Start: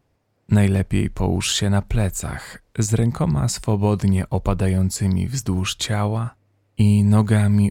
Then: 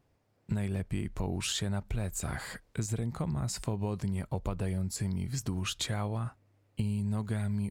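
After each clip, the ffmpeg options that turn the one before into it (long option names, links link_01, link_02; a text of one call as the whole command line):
ffmpeg -i in.wav -af "acompressor=threshold=-26dB:ratio=5,volume=-4.5dB" out.wav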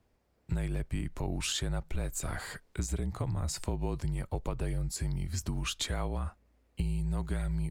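ffmpeg -i in.wav -af "afreqshift=-43" out.wav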